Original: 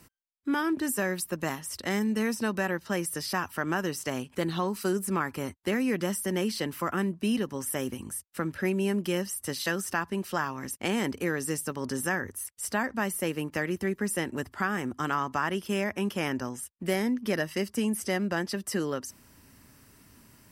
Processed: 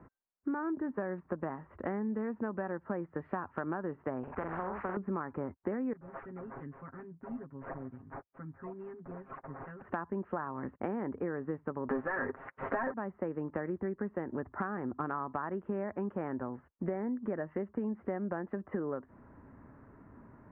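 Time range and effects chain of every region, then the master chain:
0:04.23–0:04.97: parametric band 3,500 Hz −11.5 dB 0.79 octaves + double-tracking delay 43 ms −7.5 dB + every bin compressed towards the loudest bin 4 to 1
0:05.93–0:09.82: guitar amp tone stack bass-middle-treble 6-0-2 + sample-and-hold swept by an LFO 10× 2.3 Hz + comb filter 7.4 ms, depth 100%
0:11.89–0:12.94: mid-hump overdrive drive 30 dB, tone 7,100 Hz, clips at −14 dBFS + comb filter 7.5 ms, depth 57%
whole clip: Bessel low-pass filter 930 Hz, order 8; low-shelf EQ 340 Hz −7.5 dB; downward compressor 6 to 1, threshold −41 dBFS; level +8.5 dB

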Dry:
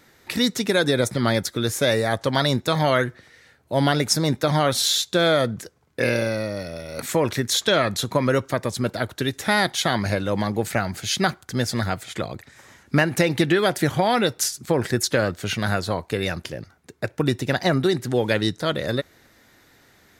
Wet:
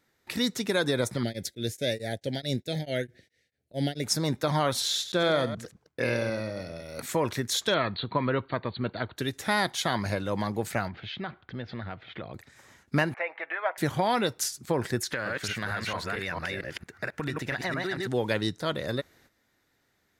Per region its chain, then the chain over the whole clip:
0:01.23–0:04.04: Butterworth band-reject 1,100 Hz, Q 0.9 + tremolo along a rectified sine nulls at 4.6 Hz
0:04.80–0:06.83: delay that plays each chunk backwards 107 ms, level −11 dB + high-shelf EQ 10,000 Hz −9 dB
0:07.74–0:09.17: linear-phase brick-wall low-pass 4,600 Hz + parametric band 560 Hz −4 dB 0.24 octaves
0:10.88–0:12.34: Butterworth low-pass 3,600 Hz + downward compressor 2.5 to 1, threshold −28 dBFS
0:13.14–0:13.78: Chebyshev band-pass filter 600–2,300 Hz, order 3 + comb filter 6.2 ms, depth 35%
0:15.03–0:18.07: delay that plays each chunk backwards 226 ms, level −1.5 dB + parametric band 1,800 Hz +11 dB 1.3 octaves + downward compressor 4 to 1, threshold −22 dBFS
whole clip: noise gate −52 dBFS, range −10 dB; dynamic equaliser 1,000 Hz, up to +5 dB, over −40 dBFS, Q 4.5; level −6.5 dB

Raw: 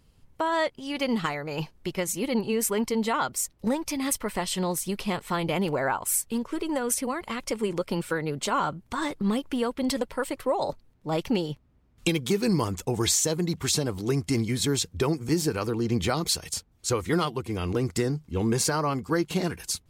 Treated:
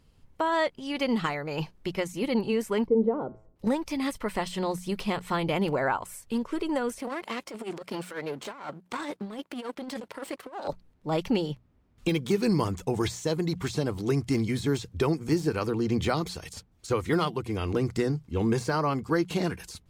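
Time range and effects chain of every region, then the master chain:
0:02.87–0:03.56: low-pass with resonance 450 Hz, resonance Q 2.1 + hum removal 107.6 Hz, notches 28 + one half of a high-frequency compander decoder only
0:06.99–0:10.68: gain on one half-wave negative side −12 dB + high-pass filter 210 Hz + compressor whose output falls as the input rises −34 dBFS, ratio −0.5
whole clip: de-essing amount 70%; high-shelf EQ 7,200 Hz −6 dB; mains-hum notches 60/120/180 Hz

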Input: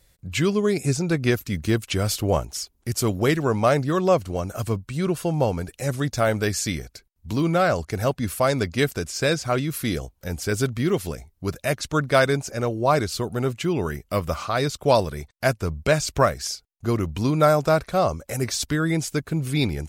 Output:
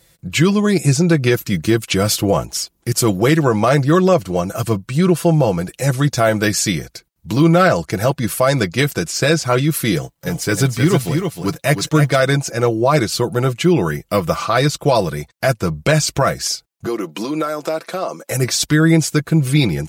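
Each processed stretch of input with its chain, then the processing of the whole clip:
0:09.95–0:12.20: mu-law and A-law mismatch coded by A + comb filter 7 ms, depth 42% + single-tap delay 311 ms −6.5 dB
0:16.86–0:18.31: high-pass filter 240 Hz 24 dB per octave + downward compressor 4 to 1, threshold −27 dBFS
whole clip: high-pass filter 74 Hz; comb filter 6 ms, depth 56%; boost into a limiter +10.5 dB; level −3 dB

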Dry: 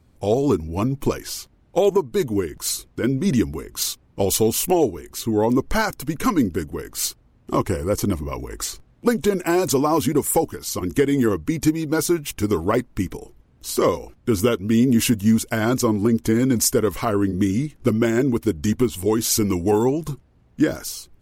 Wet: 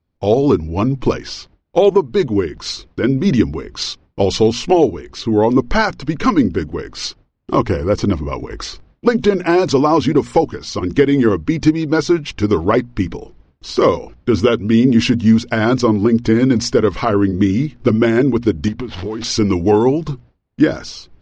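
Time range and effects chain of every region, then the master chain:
0:18.68–0:19.24: downward compressor 12 to 1, threshold −25 dBFS + windowed peak hold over 5 samples
whole clip: mains-hum notches 60/120/180/240 Hz; noise gate with hold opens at −43 dBFS; Butterworth low-pass 5,400 Hz 36 dB per octave; level +6 dB

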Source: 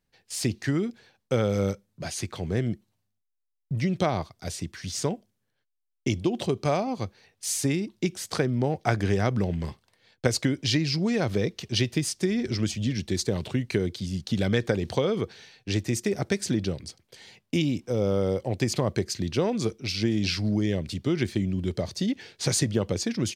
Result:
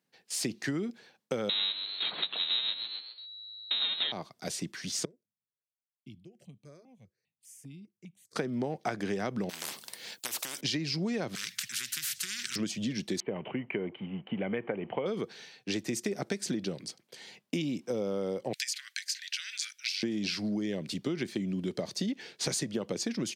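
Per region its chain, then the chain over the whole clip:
0:01.49–0:04.12: each half-wave held at its own peak + voice inversion scrambler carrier 3,900 Hz + echo with shifted repeats 132 ms, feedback 43%, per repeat +110 Hz, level −12 dB
0:05.05–0:08.36: guitar amp tone stack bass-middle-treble 10-0-1 + step-sequenced phaser 5 Hz 780–1,800 Hz
0:09.49–0:10.61: first-order pre-emphasis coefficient 0.8 + every bin compressed towards the loudest bin 10 to 1
0:11.35–0:12.56: elliptic band-stop filter 120–1,700 Hz, stop band 50 dB + every bin compressed towards the loudest bin 10 to 1
0:13.20–0:15.06: mu-law and A-law mismatch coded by mu + Chebyshev low-pass with heavy ripple 3,100 Hz, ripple 6 dB
0:18.53–0:20.03: Butterworth high-pass 1,500 Hz 72 dB per octave + multiband upward and downward compressor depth 100%
whole clip: high-pass filter 160 Hz 24 dB per octave; downward compressor, threshold −29 dBFS

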